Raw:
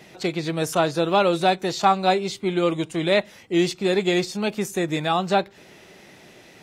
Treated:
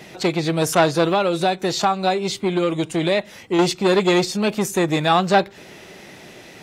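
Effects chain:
0:01.07–0:03.59: downward compressor 4 to 1, threshold −22 dBFS, peak gain reduction 8.5 dB
saturating transformer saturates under 1,100 Hz
level +6.5 dB

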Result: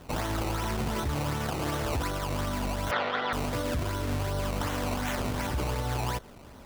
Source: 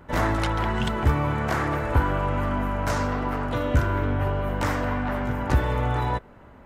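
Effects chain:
0:04.96–0:05.47: parametric band 2,400 Hz +14 dB 0.87 octaves
sample-and-hold swept by an LFO 18×, swing 100% 2.7 Hz
brickwall limiter −23.5 dBFS, peak gain reduction 13.5 dB
0:02.91–0:03.33: loudspeaker in its box 260–4,200 Hz, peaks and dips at 290 Hz −8 dB, 520 Hz +5 dB, 780 Hz +5 dB, 1,400 Hz +9 dB, 1,900 Hz +10 dB, 3,400 Hz +8 dB

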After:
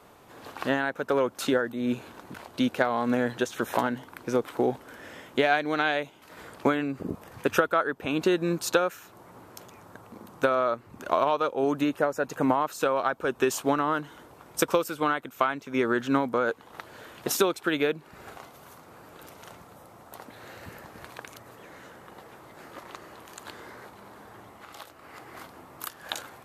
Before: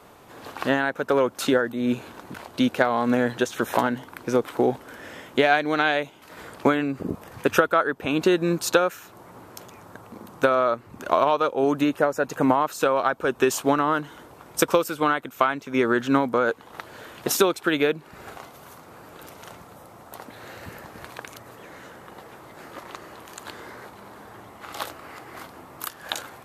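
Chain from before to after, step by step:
0:24.49–0:25.14: downward compressor 2.5 to 1, threshold −41 dBFS, peak gain reduction 11 dB
level −4 dB

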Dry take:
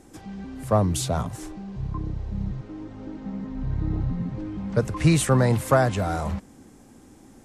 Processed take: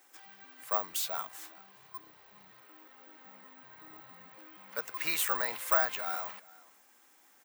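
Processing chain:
high-pass filter 1,400 Hz 12 dB per octave
high-shelf EQ 4,100 Hz −9 dB
on a send: single-tap delay 413 ms −22 dB
on the sum: bad sample-rate conversion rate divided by 2×, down none, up zero stuff

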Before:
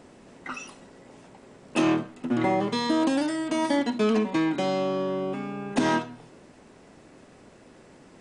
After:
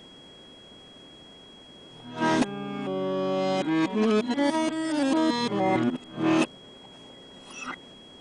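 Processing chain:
played backwards from end to start
steady tone 3,300 Hz −49 dBFS

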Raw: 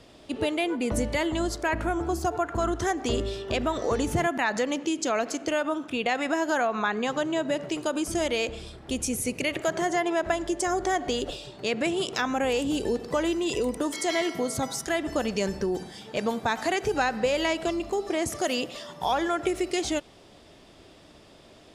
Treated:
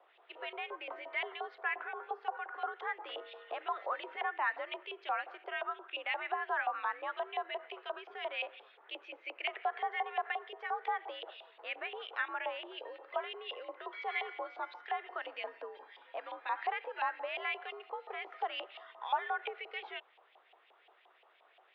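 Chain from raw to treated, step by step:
auto-filter band-pass saw up 5.7 Hz 730–2,800 Hz
single-sideband voice off tune +72 Hz 280–3,500 Hz
level −2.5 dB

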